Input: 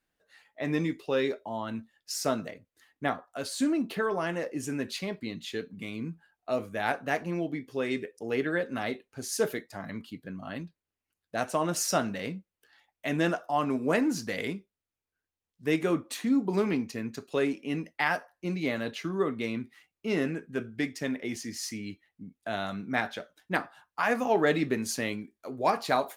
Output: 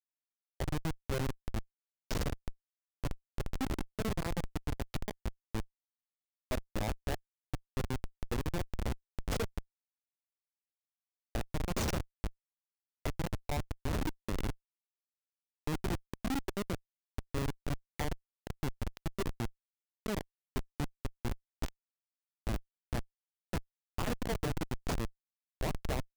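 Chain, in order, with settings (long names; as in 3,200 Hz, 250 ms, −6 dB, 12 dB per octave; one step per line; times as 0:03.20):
notch filter 1,500 Hz, Q 6.4
downward compressor 6 to 1, threshold −29 dBFS, peak gain reduction 9.5 dB
comparator with hysteresis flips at −27.5 dBFS
level +4 dB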